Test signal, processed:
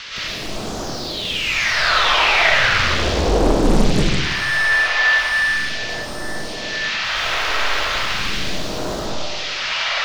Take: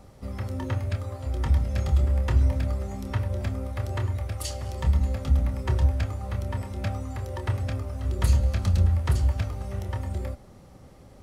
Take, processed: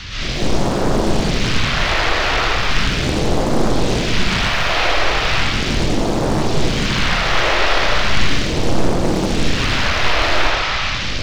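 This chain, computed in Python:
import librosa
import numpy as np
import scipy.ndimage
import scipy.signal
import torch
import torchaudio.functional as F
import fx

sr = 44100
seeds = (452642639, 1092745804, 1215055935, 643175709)

p1 = fx.octave_divider(x, sr, octaves=2, level_db=-5.0)
p2 = fx.high_shelf(p1, sr, hz=2900.0, db=11.0)
p3 = fx.over_compress(p2, sr, threshold_db=-30.0, ratio=-1.0)
p4 = p2 + (p3 * librosa.db_to_amplitude(0.0))
p5 = fx.dmg_noise_band(p4, sr, seeds[0], low_hz=510.0, high_hz=6800.0, level_db=-32.0)
p6 = fx.power_curve(p5, sr, exponent=0.7)
p7 = (np.mod(10.0 ** (17.0 / 20.0) * p6 + 1.0, 2.0) - 1.0) / 10.0 ** (17.0 / 20.0)
p8 = fx.phaser_stages(p7, sr, stages=2, low_hz=170.0, high_hz=2200.0, hz=0.37, feedback_pct=30)
p9 = fx.air_absorb(p8, sr, metres=250.0)
p10 = p9 + fx.room_early_taps(p9, sr, ms=(64, 79), db=(-9.5, -9.5), dry=0)
p11 = fx.rev_freeverb(p10, sr, rt60_s=1.2, hf_ratio=0.7, predelay_ms=85, drr_db=-9.5)
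p12 = fx.doppler_dist(p11, sr, depth_ms=1.0)
y = p12 * librosa.db_to_amplitude(-1.0)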